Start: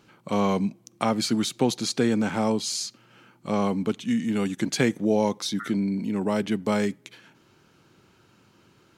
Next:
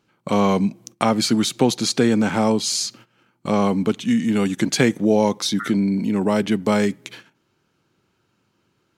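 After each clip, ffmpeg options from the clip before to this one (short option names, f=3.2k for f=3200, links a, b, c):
-filter_complex "[0:a]agate=range=-18dB:threshold=-50dB:ratio=16:detection=peak,asplit=2[a][b];[b]acompressor=threshold=-34dB:ratio=6,volume=-1dB[c];[a][c]amix=inputs=2:normalize=0,volume=4dB"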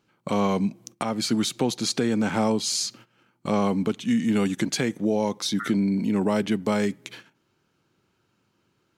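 -af "alimiter=limit=-10.5dB:level=0:latency=1:release=442,volume=-2.5dB"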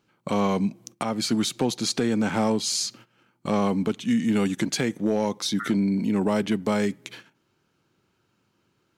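-af "asoftclip=type=hard:threshold=-15dB"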